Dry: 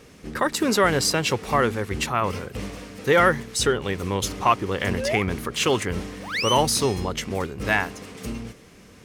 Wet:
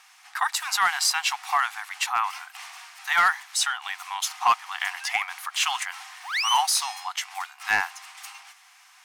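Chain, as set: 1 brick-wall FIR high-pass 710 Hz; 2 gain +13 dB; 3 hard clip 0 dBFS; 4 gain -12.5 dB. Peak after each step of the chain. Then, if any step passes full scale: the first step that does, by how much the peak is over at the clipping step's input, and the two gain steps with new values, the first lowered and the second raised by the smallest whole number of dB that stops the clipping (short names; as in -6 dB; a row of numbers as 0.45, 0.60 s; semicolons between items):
-7.5, +5.5, 0.0, -12.5 dBFS; step 2, 5.5 dB; step 2 +7 dB, step 4 -6.5 dB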